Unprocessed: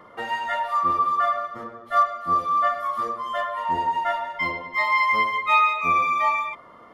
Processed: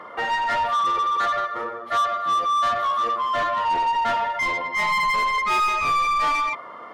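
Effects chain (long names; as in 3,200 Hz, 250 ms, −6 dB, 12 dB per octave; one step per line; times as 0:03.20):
0:00.86–0:01.81: comb filter 2.2 ms, depth 53%
mid-hump overdrive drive 24 dB, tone 2,500 Hz, clips at −7.5 dBFS
level −6.5 dB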